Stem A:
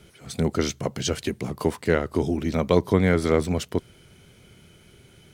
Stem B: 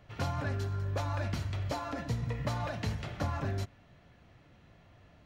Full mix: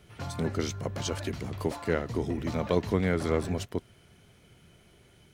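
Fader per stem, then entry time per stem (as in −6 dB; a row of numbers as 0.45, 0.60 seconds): −7.0, −4.5 decibels; 0.00, 0.00 seconds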